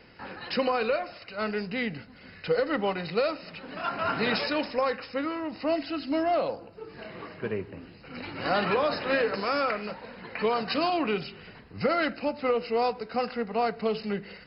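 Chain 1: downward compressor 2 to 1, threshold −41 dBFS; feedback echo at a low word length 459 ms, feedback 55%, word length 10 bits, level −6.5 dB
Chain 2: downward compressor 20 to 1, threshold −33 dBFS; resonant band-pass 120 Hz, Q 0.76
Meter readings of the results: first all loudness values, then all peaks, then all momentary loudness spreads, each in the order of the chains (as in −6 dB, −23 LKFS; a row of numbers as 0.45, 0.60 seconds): −37.5, −47.0 LKFS; −22.0, −29.5 dBFS; 6, 7 LU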